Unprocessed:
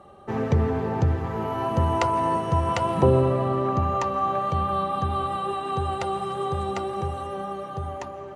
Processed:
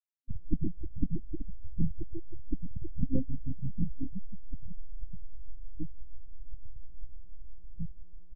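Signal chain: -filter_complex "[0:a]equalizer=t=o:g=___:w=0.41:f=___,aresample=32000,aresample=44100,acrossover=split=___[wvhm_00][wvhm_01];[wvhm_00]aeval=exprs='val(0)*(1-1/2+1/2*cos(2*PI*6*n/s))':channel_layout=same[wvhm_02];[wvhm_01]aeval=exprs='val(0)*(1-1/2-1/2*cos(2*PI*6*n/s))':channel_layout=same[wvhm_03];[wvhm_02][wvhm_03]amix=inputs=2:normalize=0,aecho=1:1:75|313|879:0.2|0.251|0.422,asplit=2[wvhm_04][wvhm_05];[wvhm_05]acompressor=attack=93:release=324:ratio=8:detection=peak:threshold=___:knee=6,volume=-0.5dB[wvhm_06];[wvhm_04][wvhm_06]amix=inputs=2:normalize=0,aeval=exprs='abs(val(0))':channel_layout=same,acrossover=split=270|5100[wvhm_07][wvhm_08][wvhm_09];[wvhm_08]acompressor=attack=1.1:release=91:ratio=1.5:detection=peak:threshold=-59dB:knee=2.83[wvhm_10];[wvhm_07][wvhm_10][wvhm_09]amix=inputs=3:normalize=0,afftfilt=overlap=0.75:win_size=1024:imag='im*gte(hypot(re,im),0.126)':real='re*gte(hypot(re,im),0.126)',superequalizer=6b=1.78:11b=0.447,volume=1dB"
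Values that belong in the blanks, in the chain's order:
-3.5, 530, 1100, -37dB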